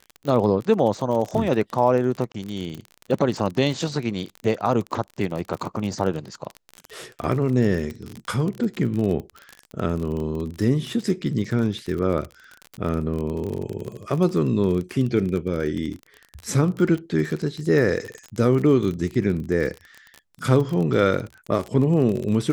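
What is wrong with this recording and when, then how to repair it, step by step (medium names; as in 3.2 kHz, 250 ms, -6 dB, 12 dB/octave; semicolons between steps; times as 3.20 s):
crackle 37 per s -27 dBFS
2.32–2.34 s: dropout 24 ms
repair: de-click; interpolate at 2.32 s, 24 ms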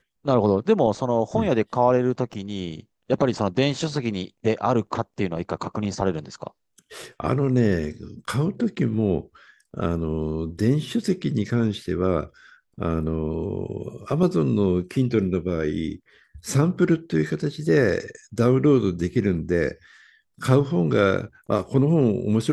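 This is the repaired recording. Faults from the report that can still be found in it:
nothing left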